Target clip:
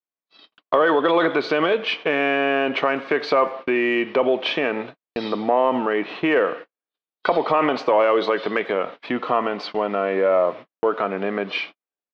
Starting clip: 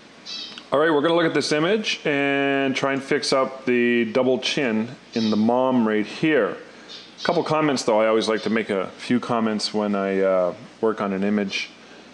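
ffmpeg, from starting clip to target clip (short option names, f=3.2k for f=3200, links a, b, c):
-filter_complex "[0:a]highpass=220,equalizer=f=220:t=q:w=4:g=-9,equalizer=f=710:t=q:w=4:g=3,equalizer=f=1.1k:t=q:w=4:g=5,lowpass=f=3.5k:w=0.5412,lowpass=f=3.5k:w=1.3066,asplit=2[a][b];[b]asoftclip=type=tanh:threshold=-11.5dB,volume=-7dB[c];[a][c]amix=inputs=2:normalize=0,asplit=2[d][e];[e]adelay=90,highpass=300,lowpass=3.4k,asoftclip=type=hard:threshold=-9.5dB,volume=-23dB[f];[d][f]amix=inputs=2:normalize=0,agate=range=-56dB:threshold=-31dB:ratio=16:detection=peak,volume=-2dB"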